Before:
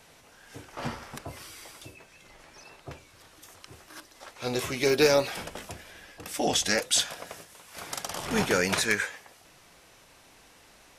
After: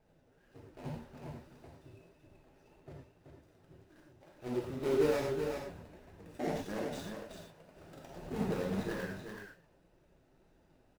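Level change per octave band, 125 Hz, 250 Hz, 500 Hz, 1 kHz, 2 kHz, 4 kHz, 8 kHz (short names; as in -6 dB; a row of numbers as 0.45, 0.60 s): -4.0, -4.5, -7.0, -11.0, -16.5, -21.5, -24.0 dB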